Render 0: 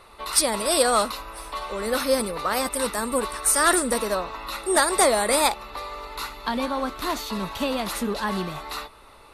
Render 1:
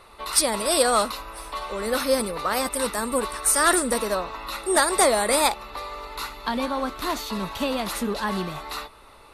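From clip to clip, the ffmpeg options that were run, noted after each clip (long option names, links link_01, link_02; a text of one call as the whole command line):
ffmpeg -i in.wav -af anull out.wav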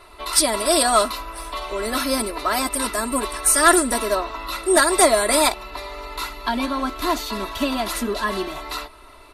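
ffmpeg -i in.wav -af "aecho=1:1:3:0.9,volume=1dB" out.wav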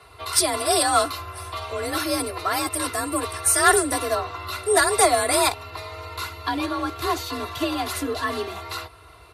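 ffmpeg -i in.wav -af "afreqshift=47,volume=-2.5dB" out.wav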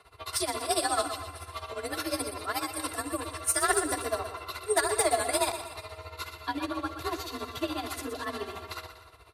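ffmpeg -i in.wav -filter_complex "[0:a]asoftclip=type=tanh:threshold=-6.5dB,tremolo=f=14:d=0.83,asplit=2[link_01][link_02];[link_02]aecho=0:1:121|242|363|484|605:0.316|0.149|0.0699|0.0328|0.0154[link_03];[link_01][link_03]amix=inputs=2:normalize=0,volume=-4.5dB" out.wav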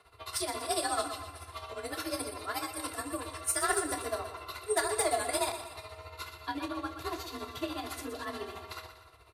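ffmpeg -i in.wav -filter_complex "[0:a]asplit=2[link_01][link_02];[link_02]adelay=28,volume=-10.5dB[link_03];[link_01][link_03]amix=inputs=2:normalize=0,volume=-4dB" out.wav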